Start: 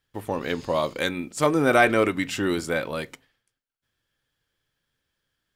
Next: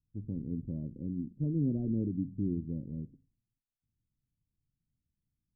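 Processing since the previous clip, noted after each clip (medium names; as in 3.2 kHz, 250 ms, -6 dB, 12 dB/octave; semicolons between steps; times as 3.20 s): inverse Chebyshev low-pass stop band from 1.4 kHz, stop band 80 dB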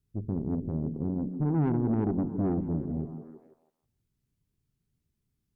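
peaking EQ 400 Hz +11.5 dB 0.29 oct; valve stage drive 31 dB, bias 0.5; repeats whose band climbs or falls 162 ms, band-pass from 210 Hz, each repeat 0.7 oct, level -6.5 dB; trim +8 dB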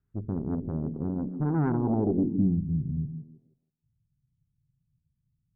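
low-pass sweep 1.5 kHz -> 140 Hz, 1.69–2.61 s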